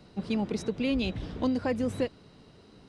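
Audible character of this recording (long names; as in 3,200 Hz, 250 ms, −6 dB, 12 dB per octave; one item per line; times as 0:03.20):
background noise floor −56 dBFS
spectral slope −5.5 dB per octave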